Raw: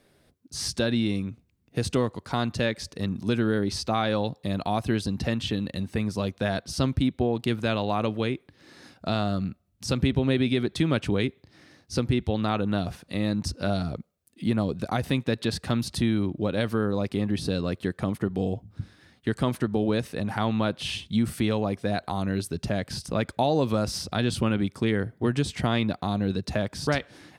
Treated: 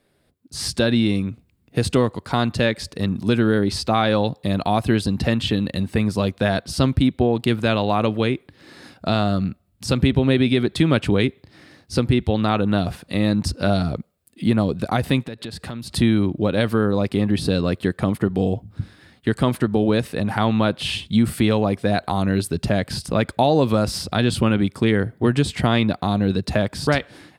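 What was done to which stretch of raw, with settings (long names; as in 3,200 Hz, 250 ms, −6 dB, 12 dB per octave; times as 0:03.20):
0:15.25–0:15.94: downward compressor 4 to 1, threshold −36 dBFS
whole clip: automatic gain control gain up to 11.5 dB; parametric band 6,000 Hz −6.5 dB 0.29 octaves; level −3 dB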